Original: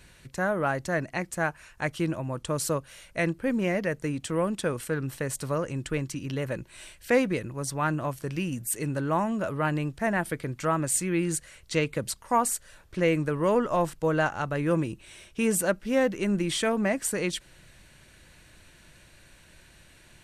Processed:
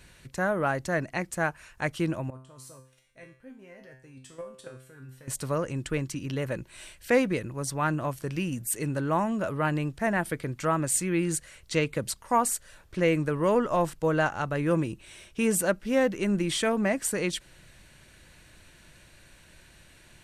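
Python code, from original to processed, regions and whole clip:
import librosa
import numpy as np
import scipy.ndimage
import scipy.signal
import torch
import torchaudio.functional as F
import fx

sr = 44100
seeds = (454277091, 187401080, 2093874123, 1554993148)

y = fx.chain(x, sr, fx.level_steps(step_db=12),
    fx.comb_fb(f0_hz=130.0, decay_s=0.49, harmonics='all', damping=0.0, mix_pct=90), at=(2.3, 5.28))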